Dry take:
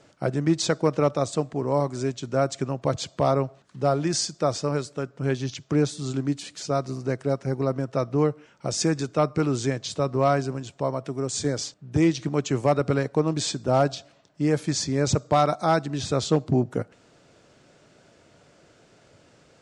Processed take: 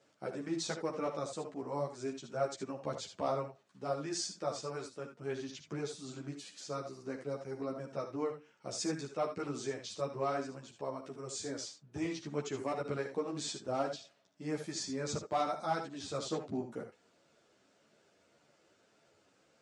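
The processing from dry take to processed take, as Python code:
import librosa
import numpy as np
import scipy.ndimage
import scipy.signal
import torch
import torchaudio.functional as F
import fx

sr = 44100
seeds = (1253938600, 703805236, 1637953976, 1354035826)

y = fx.highpass(x, sr, hz=250.0, slope=6)
y = fx.room_early_taps(y, sr, ms=(57, 75), db=(-13.5, -9.5))
y = fx.ensemble(y, sr)
y = y * librosa.db_to_amplitude(-9.0)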